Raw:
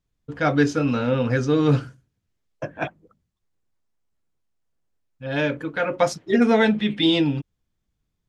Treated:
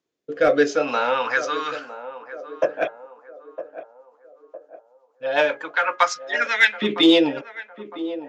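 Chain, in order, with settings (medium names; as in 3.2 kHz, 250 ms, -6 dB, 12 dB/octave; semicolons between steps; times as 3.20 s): LFO high-pass saw up 0.44 Hz 350–2200 Hz; resampled via 16 kHz; in parallel at -6.5 dB: overload inside the chain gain 14 dB; on the sum: rotary cabinet horn 0.65 Hz, later 8 Hz, at 2.55 s; de-hum 413.4 Hz, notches 5; on a send: band-passed feedback delay 958 ms, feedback 47%, band-pass 540 Hz, level -12 dB; on the sum: trim +2.5 dB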